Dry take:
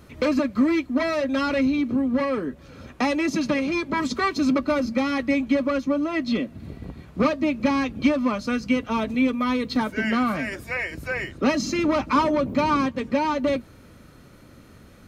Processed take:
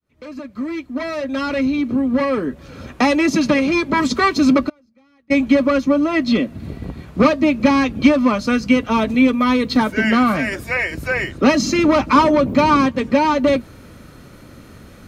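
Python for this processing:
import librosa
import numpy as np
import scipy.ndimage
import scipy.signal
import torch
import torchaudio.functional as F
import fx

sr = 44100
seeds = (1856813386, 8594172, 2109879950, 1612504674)

y = fx.fade_in_head(x, sr, length_s=2.83)
y = fx.gate_flip(y, sr, shuts_db=-25.0, range_db=-39, at=(4.68, 5.3), fade=0.02)
y = y * librosa.db_to_amplitude(7.5)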